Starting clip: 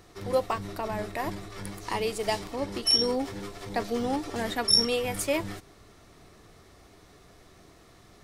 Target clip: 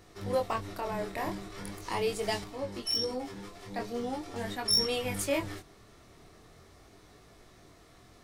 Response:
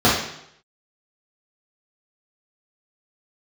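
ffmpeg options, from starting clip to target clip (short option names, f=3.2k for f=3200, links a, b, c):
-filter_complex "[0:a]flanger=delay=19:depth=7.2:speed=0.41,aeval=exprs='0.237*sin(PI/2*1.58*val(0)/0.237)':c=same,asettb=1/sr,asplit=3[a][b][c];[a]atrim=end=2.444[d];[b]atrim=start=2.44:end=4.66,asetpts=PTS-STARTPTS,afade=t=in:d=0.004:c=qsin,afade=t=out:st=2.216:d=0.004:c=qsin,flanger=delay=9.3:depth=2.5:regen=52:speed=1.4:shape=triangular[e];[c]atrim=start=4.656[f];[d][e]acrossfade=d=0.004:c1=hsin:c2=qsin[g];[g][f]acrossfade=d=0.004:c1=qsin:c2=hsin,volume=-7dB"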